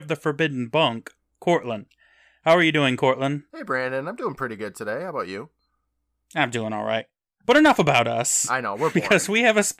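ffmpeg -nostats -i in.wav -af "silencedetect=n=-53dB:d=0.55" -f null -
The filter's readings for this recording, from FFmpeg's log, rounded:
silence_start: 5.48
silence_end: 6.31 | silence_duration: 0.83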